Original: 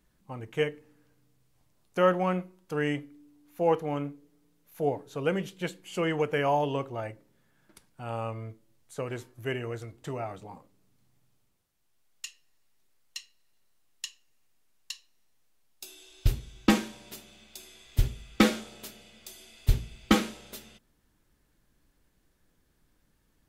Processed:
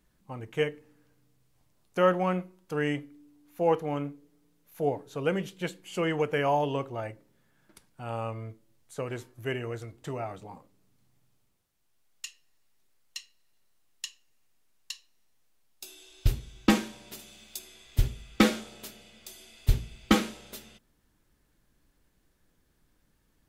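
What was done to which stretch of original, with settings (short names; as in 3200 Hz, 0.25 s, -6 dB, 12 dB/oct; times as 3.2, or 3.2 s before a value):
17.19–17.59 high shelf 4500 Hz +9 dB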